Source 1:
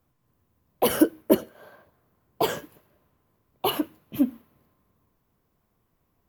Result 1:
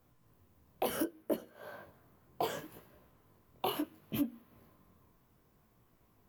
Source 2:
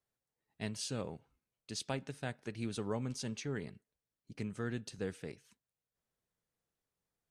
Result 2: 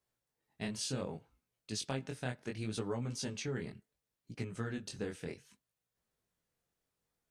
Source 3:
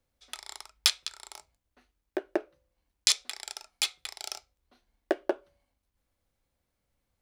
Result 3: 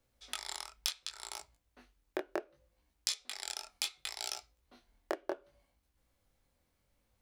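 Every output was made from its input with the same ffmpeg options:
-af "acompressor=threshold=0.0158:ratio=5,flanger=delay=16.5:depth=7.8:speed=0.68,volume=2"

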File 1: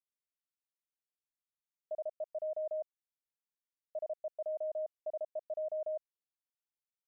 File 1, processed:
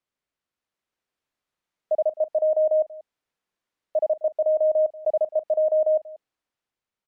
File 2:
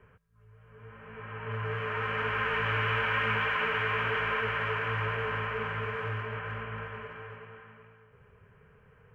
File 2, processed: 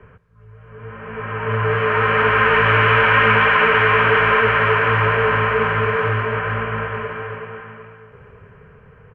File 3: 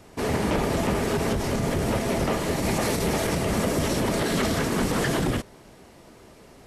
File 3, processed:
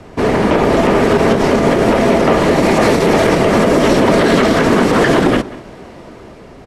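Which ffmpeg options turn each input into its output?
-filter_complex "[0:a]aemphasis=mode=reproduction:type=75fm,bandreject=f=840:w=28,acrossover=split=200[s0][s1];[s0]aeval=exprs='0.0299*(abs(mod(val(0)/0.0299+3,4)-2)-1)':c=same[s2];[s1]dynaudnorm=f=180:g=9:m=1.5[s3];[s2][s3]amix=inputs=2:normalize=0,asplit=2[s4][s5];[s5]adelay=186.6,volume=0.112,highshelf=f=4000:g=-4.2[s6];[s4][s6]amix=inputs=2:normalize=0,alimiter=level_in=4.73:limit=0.891:release=50:level=0:latency=1,volume=0.891"

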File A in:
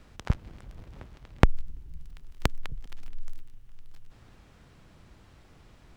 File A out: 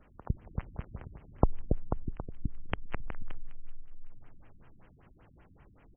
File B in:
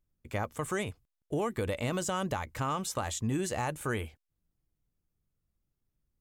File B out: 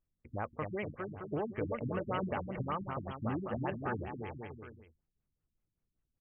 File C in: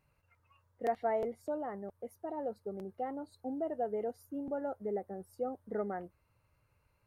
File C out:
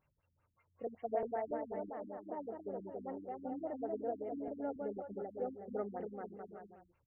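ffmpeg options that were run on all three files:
-filter_complex "[0:a]lowshelf=f=320:g=-4,asplit=2[s0][s1];[s1]aecho=0:1:280|490|647.5|765.6|854.2:0.631|0.398|0.251|0.158|0.1[s2];[s0][s2]amix=inputs=2:normalize=0,afftfilt=real='re*lt(b*sr/1024,290*pow(3300/290,0.5+0.5*sin(2*PI*5.2*pts/sr)))':imag='im*lt(b*sr/1024,290*pow(3300/290,0.5+0.5*sin(2*PI*5.2*pts/sr)))':win_size=1024:overlap=0.75,volume=0.75"

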